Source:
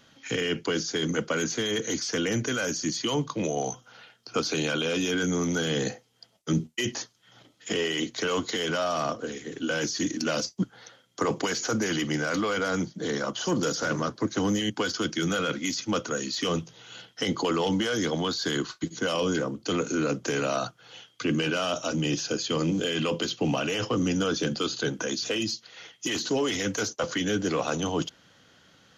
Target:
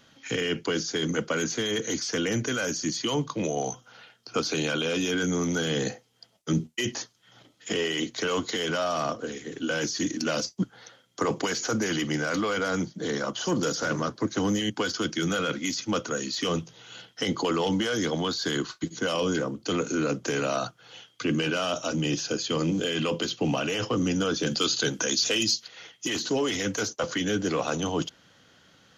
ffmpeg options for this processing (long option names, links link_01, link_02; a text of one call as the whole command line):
ffmpeg -i in.wav -filter_complex "[0:a]asettb=1/sr,asplit=3[link_01][link_02][link_03];[link_01]atrim=end=24.464[link_04];[link_02]atrim=start=24.46:end=25.68,asetpts=PTS-STARTPTS,afade=type=in:duration=0.004:curve=qsin,afade=type=out:start_time=1.216:duration=0.004:curve=qsin,highshelf=frequency=2700:gain=9.5[link_05];[link_03]atrim=start=25.676[link_06];[link_04][link_05]acrossfade=duration=0.004:curve1=hsin:curve2=qsin[link_07];[link_07][link_06]acrossfade=duration=0.004:curve1=qsin:curve2=hsin" out.wav